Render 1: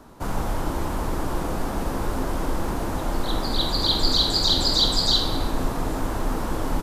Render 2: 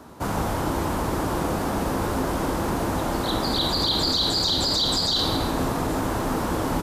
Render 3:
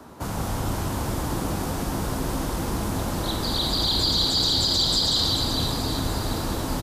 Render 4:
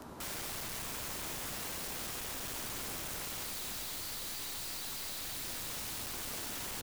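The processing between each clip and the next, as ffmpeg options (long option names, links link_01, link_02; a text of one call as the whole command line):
ffmpeg -i in.wav -af "highpass=65,alimiter=limit=-17.5dB:level=0:latency=1:release=22,volume=3.5dB" out.wav
ffmpeg -i in.wav -filter_complex "[0:a]acrossover=split=180|3000[link_01][link_02][link_03];[link_02]acompressor=threshold=-37dB:ratio=2[link_04];[link_01][link_04][link_03]amix=inputs=3:normalize=0,asplit=2[link_05][link_06];[link_06]aecho=0:1:190|437|758.1|1176|1718:0.631|0.398|0.251|0.158|0.1[link_07];[link_05][link_07]amix=inputs=2:normalize=0" out.wav
ffmpeg -i in.wav -af "aeval=exprs='(tanh(17.8*val(0)+0.65)-tanh(0.65))/17.8':channel_layout=same,aeval=exprs='(mod(66.8*val(0)+1,2)-1)/66.8':channel_layout=same" out.wav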